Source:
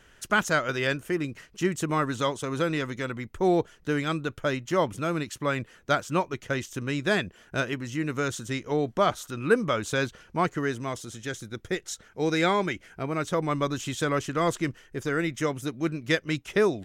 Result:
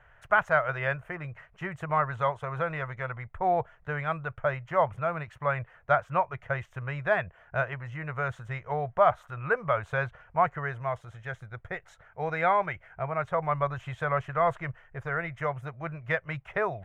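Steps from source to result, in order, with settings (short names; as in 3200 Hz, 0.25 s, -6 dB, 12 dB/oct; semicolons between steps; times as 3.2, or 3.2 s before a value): EQ curve 140 Hz 0 dB, 270 Hz -25 dB, 660 Hz +5 dB, 2100 Hz -2 dB, 4800 Hz -26 dB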